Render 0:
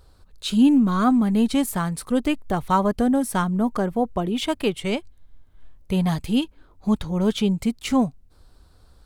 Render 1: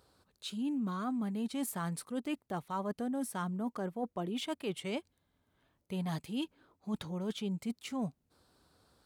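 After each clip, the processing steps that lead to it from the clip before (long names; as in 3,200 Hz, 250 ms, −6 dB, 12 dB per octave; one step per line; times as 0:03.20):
high-pass filter 150 Hz 12 dB per octave
reversed playback
downward compressor 6 to 1, threshold −27 dBFS, peak gain reduction 14 dB
reversed playback
level −6.5 dB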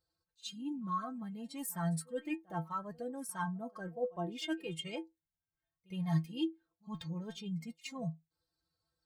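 spectral dynamics exaggerated over time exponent 1.5
stiff-string resonator 160 Hz, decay 0.2 s, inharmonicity 0.008
backwards echo 64 ms −23 dB
level +11.5 dB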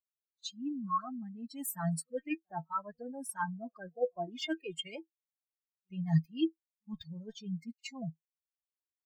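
spectral dynamics exaggerated over time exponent 2
level +5.5 dB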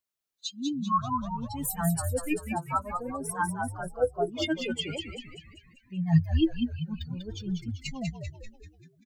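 echo with shifted repeats 195 ms, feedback 52%, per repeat −82 Hz, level −5 dB
level +6 dB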